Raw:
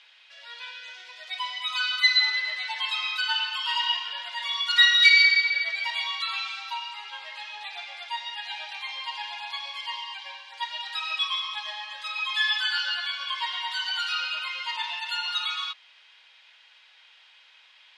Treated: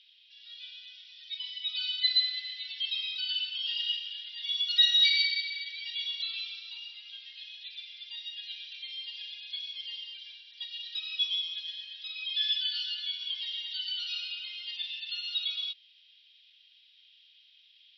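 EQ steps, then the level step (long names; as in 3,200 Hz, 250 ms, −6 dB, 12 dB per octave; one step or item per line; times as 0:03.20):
four-pole ladder high-pass 2,900 Hz, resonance 55%
linear-phase brick-wall low-pass 5,900 Hz
0.0 dB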